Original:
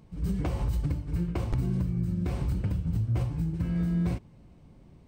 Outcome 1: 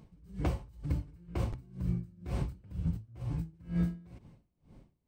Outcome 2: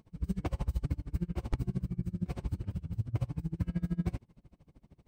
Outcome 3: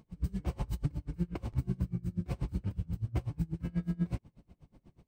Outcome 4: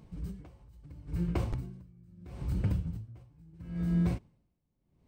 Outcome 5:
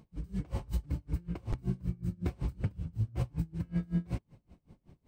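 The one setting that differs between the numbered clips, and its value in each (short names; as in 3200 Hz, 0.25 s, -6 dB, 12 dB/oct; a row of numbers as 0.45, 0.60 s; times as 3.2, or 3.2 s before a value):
dB-linear tremolo, rate: 2.1, 13, 8.2, 0.75, 5.3 Hz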